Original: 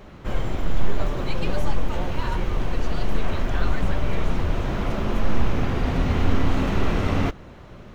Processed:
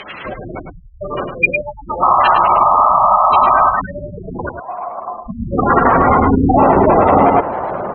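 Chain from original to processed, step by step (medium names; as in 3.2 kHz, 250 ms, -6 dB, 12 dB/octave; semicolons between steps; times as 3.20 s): spectral gate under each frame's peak -25 dB strong; wow and flutter 24 cents; 2.02–3.71 s: painted sound noise 570–1300 Hz -26 dBFS; band-pass sweep 2.9 kHz -> 810 Hz, 4.22–6.68 s; 4.49–5.26 s: cascade formant filter a; on a send: delay 105 ms -7.5 dB; on the sum: loudness maximiser +34 dB; trim -1 dB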